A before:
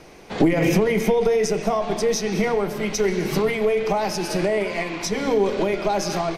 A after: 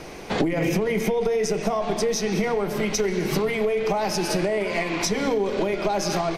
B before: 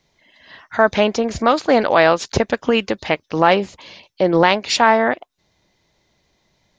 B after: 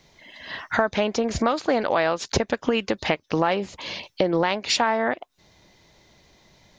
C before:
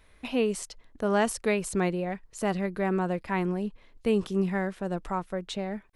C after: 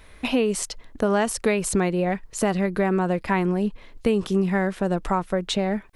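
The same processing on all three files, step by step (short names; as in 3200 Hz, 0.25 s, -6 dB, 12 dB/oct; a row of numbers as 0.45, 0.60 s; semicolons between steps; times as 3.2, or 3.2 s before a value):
compressor 4:1, threshold -29 dBFS; match loudness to -24 LUFS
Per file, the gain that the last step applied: +7.0, +7.5, +10.5 dB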